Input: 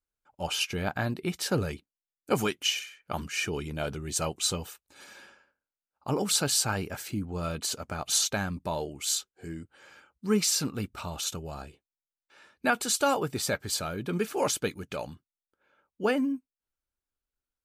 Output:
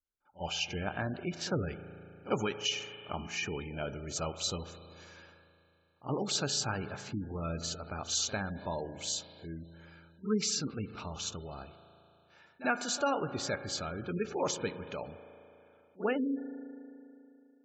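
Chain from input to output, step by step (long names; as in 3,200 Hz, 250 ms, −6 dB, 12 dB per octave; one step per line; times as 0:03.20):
downsampling to 16,000 Hz
on a send: backwards echo 48 ms −16 dB
on the sum: spring reverb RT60 2.9 s, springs 36 ms, chirp 45 ms, DRR 10 dB
gate on every frequency bin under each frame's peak −25 dB strong
level −5 dB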